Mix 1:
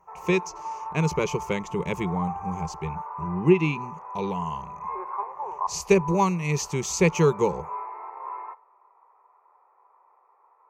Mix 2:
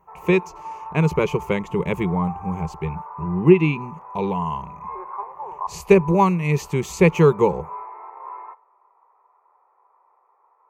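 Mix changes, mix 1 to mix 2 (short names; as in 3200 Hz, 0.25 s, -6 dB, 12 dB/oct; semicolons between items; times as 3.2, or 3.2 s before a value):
speech +5.5 dB; master: add bell 5800 Hz -14 dB 1 oct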